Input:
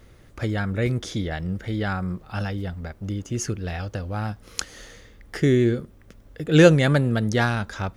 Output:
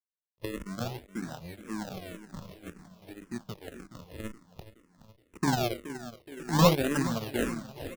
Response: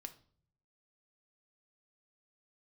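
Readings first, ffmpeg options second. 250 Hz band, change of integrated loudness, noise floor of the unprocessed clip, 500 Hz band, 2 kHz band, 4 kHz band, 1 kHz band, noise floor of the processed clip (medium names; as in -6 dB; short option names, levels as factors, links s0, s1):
-9.0 dB, -7.5 dB, -51 dBFS, -10.0 dB, -11.0 dB, -5.0 dB, -2.5 dB, -78 dBFS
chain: -filter_complex "[0:a]bandreject=f=50:t=h:w=6,bandreject=f=100:t=h:w=6,bandreject=f=150:t=h:w=6,bandreject=f=200:t=h:w=6,bandreject=f=250:t=h:w=6,bandreject=f=300:t=h:w=6,bandreject=f=350:t=h:w=6,bandreject=f=400:t=h:w=6,aeval=exprs='0.75*(cos(1*acos(clip(val(0)/0.75,-1,1)))-cos(1*PI/2))+0.0841*(cos(7*acos(clip(val(0)/0.75,-1,1)))-cos(7*PI/2))':c=same,lowshelf=f=140:t=q:w=1.5:g=-8.5,bandreject=f=490:w=12,asplit=2[s0][s1];[s1]acompressor=threshold=0.0158:ratio=6,volume=1.26[s2];[s0][s2]amix=inputs=2:normalize=0,lowpass=1700,acrusher=samples=39:mix=1:aa=0.000001:lfo=1:lforange=39:lforate=0.54,asoftclip=type=tanh:threshold=0.266,acrusher=bits=8:mix=0:aa=0.000001,aeval=exprs='sgn(val(0))*max(abs(val(0))-0.00708,0)':c=same,aecho=1:1:422|844|1266|1688|2110|2532:0.2|0.112|0.0626|0.035|0.0196|0.011,asplit=2[s3][s4];[s4]afreqshift=-1.9[s5];[s3][s5]amix=inputs=2:normalize=1"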